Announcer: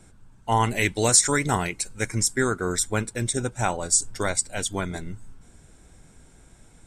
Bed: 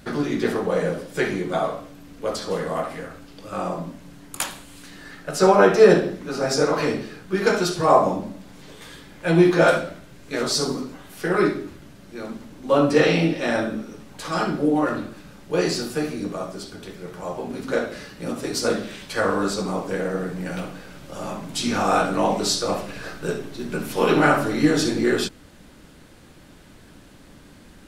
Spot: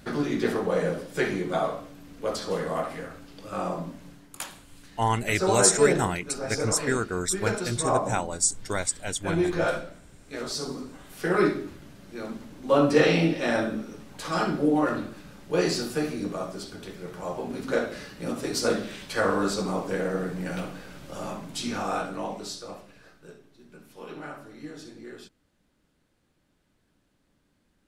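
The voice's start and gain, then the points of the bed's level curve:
4.50 s, -3.0 dB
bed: 4.08 s -3 dB
4.29 s -9.5 dB
10.62 s -9.5 dB
11.26 s -2.5 dB
21.14 s -2.5 dB
23.41 s -22.5 dB

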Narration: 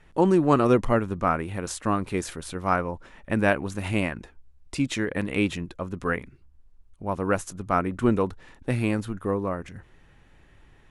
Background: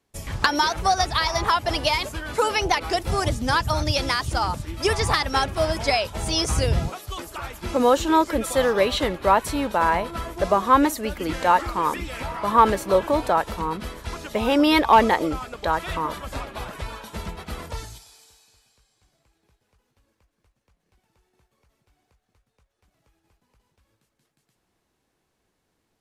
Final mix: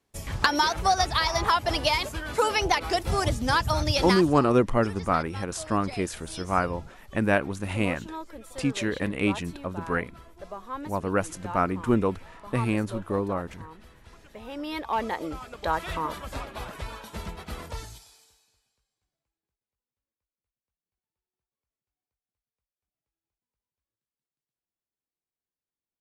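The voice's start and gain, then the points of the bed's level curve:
3.85 s, -1.0 dB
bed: 4.12 s -2 dB
4.45 s -19.5 dB
14.43 s -19.5 dB
15.7 s -3.5 dB
18.06 s -3.5 dB
19.65 s -28 dB

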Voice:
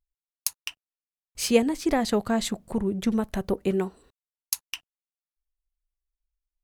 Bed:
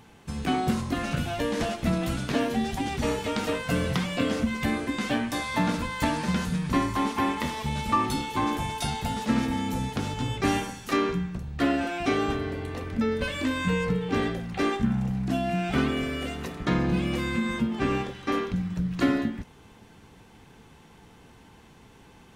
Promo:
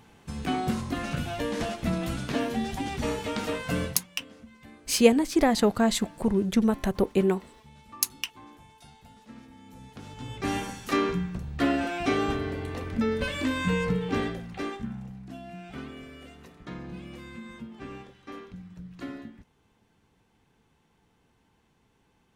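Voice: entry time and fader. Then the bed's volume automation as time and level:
3.50 s, +2.0 dB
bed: 3.84 s -2.5 dB
4.07 s -23 dB
9.56 s -23 dB
10.71 s -0.5 dB
14.06 s -0.5 dB
15.24 s -15 dB

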